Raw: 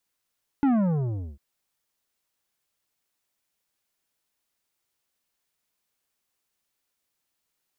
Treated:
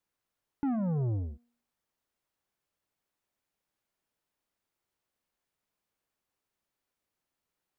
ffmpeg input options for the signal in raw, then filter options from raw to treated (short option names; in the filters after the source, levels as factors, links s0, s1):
-f lavfi -i "aevalsrc='0.112*clip((0.75-t)/0.72,0,1)*tanh(3.35*sin(2*PI*290*0.75/log(65/290)*(exp(log(65/290)*t/0.75)-1)))/tanh(3.35)':d=0.75:s=44100"
-af "highshelf=f=2200:g=-10.5,bandreject=f=238.2:t=h:w=4,bandreject=f=476.4:t=h:w=4,bandreject=f=714.6:t=h:w=4,alimiter=level_in=1.41:limit=0.0631:level=0:latency=1:release=146,volume=0.708"